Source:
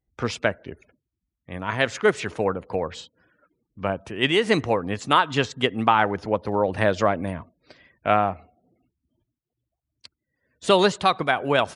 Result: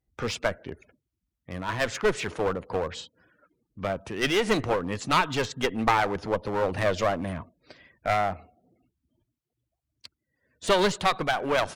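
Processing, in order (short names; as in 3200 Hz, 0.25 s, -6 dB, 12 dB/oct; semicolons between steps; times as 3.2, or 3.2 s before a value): one-sided clip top -26.5 dBFS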